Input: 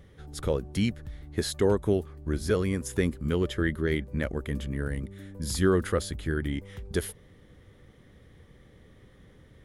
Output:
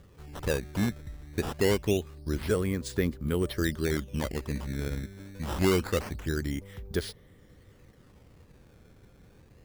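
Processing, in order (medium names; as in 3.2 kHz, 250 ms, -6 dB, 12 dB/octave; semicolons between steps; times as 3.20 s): decimation with a swept rate 13×, swing 160% 0.25 Hz; trim -1.5 dB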